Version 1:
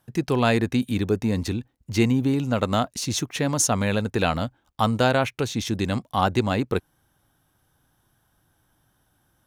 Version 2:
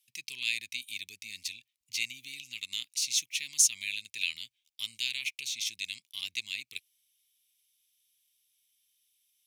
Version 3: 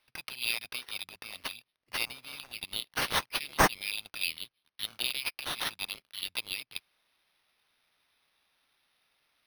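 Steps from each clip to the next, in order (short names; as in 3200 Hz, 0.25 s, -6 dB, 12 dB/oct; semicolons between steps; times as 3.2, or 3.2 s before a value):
elliptic high-pass 2300 Hz, stop band 40 dB
careless resampling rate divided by 6×, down none, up hold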